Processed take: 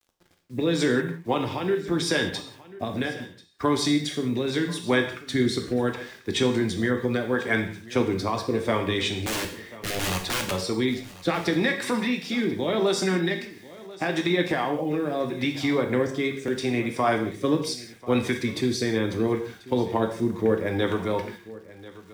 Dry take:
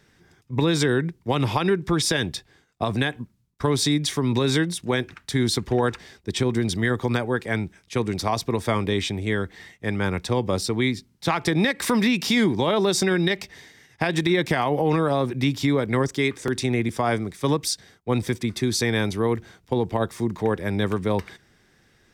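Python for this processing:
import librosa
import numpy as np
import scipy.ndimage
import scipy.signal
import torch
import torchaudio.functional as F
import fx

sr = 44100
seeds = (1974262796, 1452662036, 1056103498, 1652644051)

p1 = fx.spec_quant(x, sr, step_db=15)
p2 = fx.highpass(p1, sr, hz=250.0, slope=6)
p3 = fx.high_shelf(p2, sr, hz=5000.0, db=-9.0)
p4 = fx.rider(p3, sr, range_db=5, speed_s=0.5)
p5 = fx.overflow_wrap(p4, sr, gain_db=22.5, at=(9.25, 10.51))
p6 = fx.rotary(p5, sr, hz=0.75)
p7 = fx.quant_dither(p6, sr, seeds[0], bits=10, dither='none')
p8 = p7 + fx.echo_single(p7, sr, ms=1039, db=-19.0, dry=0)
p9 = fx.rev_gated(p8, sr, seeds[1], gate_ms=210, shape='falling', drr_db=4.0)
y = F.gain(torch.from_numpy(p9), 2.0).numpy()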